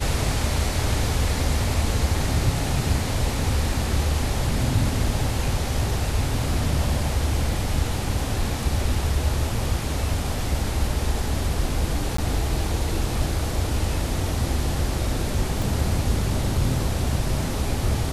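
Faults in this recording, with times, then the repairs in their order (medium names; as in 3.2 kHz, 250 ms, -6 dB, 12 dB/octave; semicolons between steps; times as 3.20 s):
12.17–12.18 s: dropout 14 ms
15.62 s: pop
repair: de-click; interpolate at 12.17 s, 14 ms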